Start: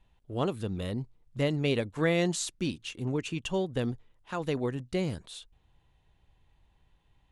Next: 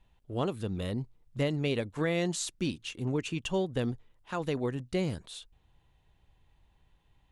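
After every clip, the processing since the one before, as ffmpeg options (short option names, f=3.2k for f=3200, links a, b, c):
-af "alimiter=limit=-19.5dB:level=0:latency=1:release=362"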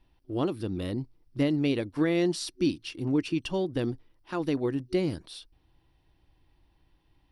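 -af "superequalizer=6b=2.82:14b=1.78:15b=0.355"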